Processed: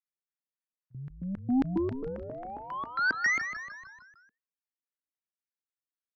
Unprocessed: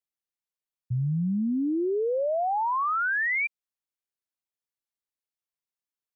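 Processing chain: LFO band-pass square 3.7 Hz 280–1700 Hz; Chebyshev shaper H 3 -16 dB, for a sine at -23 dBFS; frequency-shifting echo 152 ms, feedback 55%, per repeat -82 Hz, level -9 dB; trim +3.5 dB

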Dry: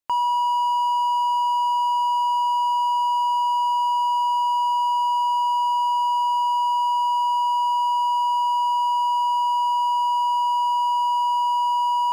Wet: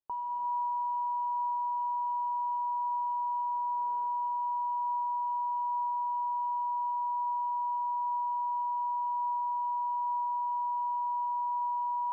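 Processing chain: 3.55–4.07 s: CVSD coder 32 kbps; saturation -25.5 dBFS, distortion -11 dB; gated-style reverb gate 370 ms rising, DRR 4 dB; flange 0.23 Hz, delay 2.3 ms, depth 2.6 ms, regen +75%; peak limiter -27.5 dBFS, peak gain reduction 5 dB; low-pass 1.1 kHz 24 dB/octave

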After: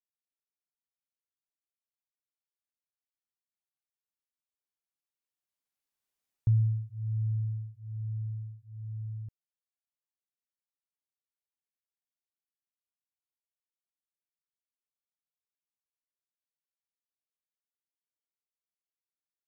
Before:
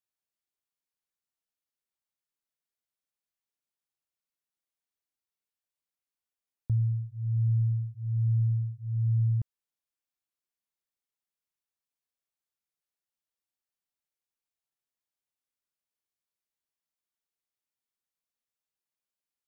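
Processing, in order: Doppler pass-by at 6.21 s, 13 m/s, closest 5.3 m; trim +4 dB

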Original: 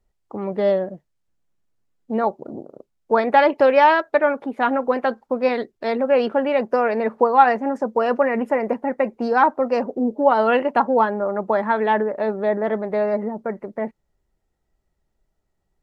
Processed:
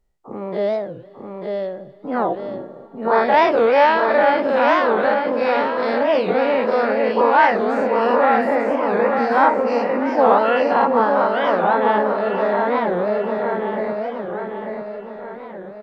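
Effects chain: every event in the spectrogram widened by 120 ms; on a send: feedback delay 893 ms, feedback 50%, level -4 dB; on the sum: Schroeder reverb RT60 3.1 s, combs from 29 ms, DRR 16.5 dB; warped record 45 rpm, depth 250 cents; trim -4.5 dB

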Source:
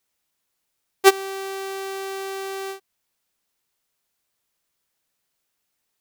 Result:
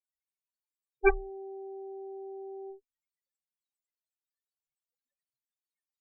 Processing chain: loudest bins only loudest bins 2; Chebyshev shaper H 3 -21 dB, 6 -11 dB, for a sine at -9 dBFS; rippled EQ curve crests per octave 1, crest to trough 16 dB

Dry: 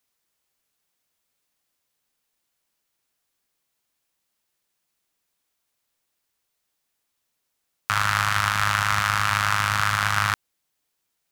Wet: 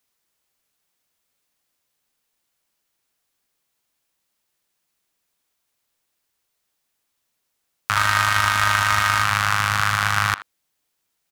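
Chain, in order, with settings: 7.96–9.24 s: comb 3.2 ms; speakerphone echo 80 ms, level -14 dB; trim +2 dB

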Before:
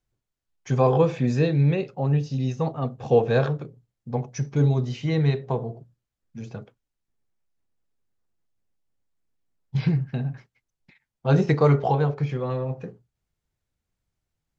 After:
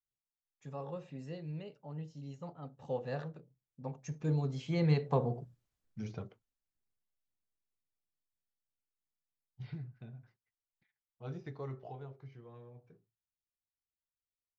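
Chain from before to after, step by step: Doppler pass-by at 5.55 s, 24 m/s, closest 8.1 m

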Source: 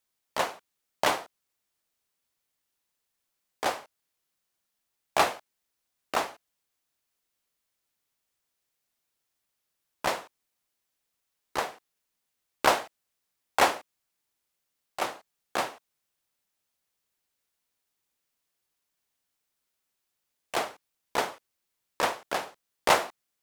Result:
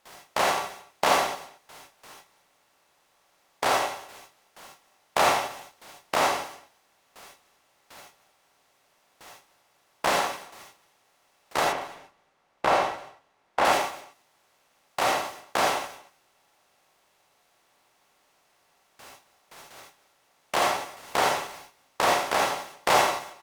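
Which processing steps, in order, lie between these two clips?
spectral levelling over time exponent 0.4; flange 0.88 Hz, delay 3.3 ms, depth 9.3 ms, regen -63%; gate with hold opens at -36 dBFS; 11.64–13.65 s: low-pass 1.9 kHz 6 dB/octave; delay 228 ms -20.5 dB; gated-style reverb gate 100 ms rising, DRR 0.5 dB

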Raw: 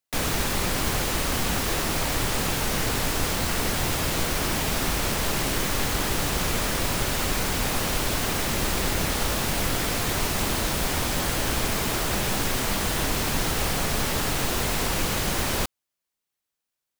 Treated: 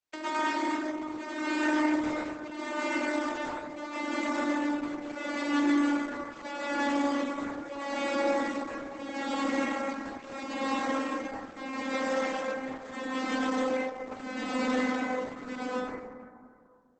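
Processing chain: vocoder on a note that slides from D#4, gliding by -4 st; high-pass 250 Hz 12 dB/octave; reverb removal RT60 1.2 s; dynamic bell 2.1 kHz, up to +6 dB, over -59 dBFS, Q 4.1; compressor with a negative ratio -34 dBFS, ratio -1; tremolo triangle 0.77 Hz, depth 100%; reverberation RT60 2.0 s, pre-delay 93 ms, DRR -7.5 dB; Opus 12 kbps 48 kHz

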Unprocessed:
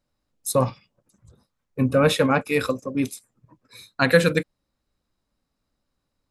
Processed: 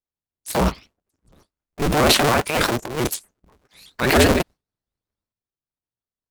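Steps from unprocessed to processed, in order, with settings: cycle switcher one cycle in 2, inverted; gate with hold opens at -46 dBFS; transient shaper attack -6 dB, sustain +10 dB; in parallel at -7 dB: bit crusher 4-bit; on the sum: vibrato with a chosen wave saw up 7 Hz, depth 250 cents; trim -1.5 dB

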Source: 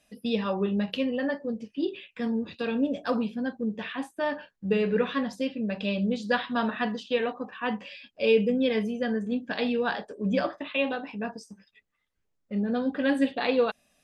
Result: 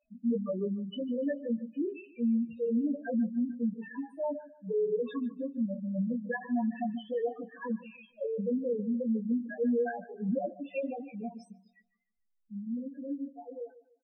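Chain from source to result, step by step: fade out at the end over 2.96 s; 3.72–5.31 s: Chebyshev high-pass 250 Hz, order 3; loudest bins only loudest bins 2; peak limiter -26 dBFS, peak gain reduction 11 dB; doubling 17 ms -5 dB; on a send: feedback echo behind a low-pass 148 ms, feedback 31%, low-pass 3.5 kHz, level -17 dB

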